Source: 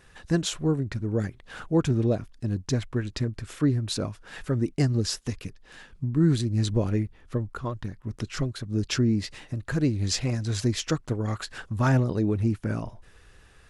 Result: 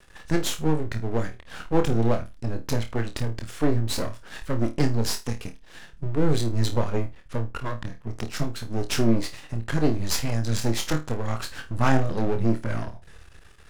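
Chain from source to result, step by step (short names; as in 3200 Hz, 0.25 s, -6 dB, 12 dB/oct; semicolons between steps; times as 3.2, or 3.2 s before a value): half-wave rectifier; flutter echo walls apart 4.5 m, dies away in 0.23 s; gain +5 dB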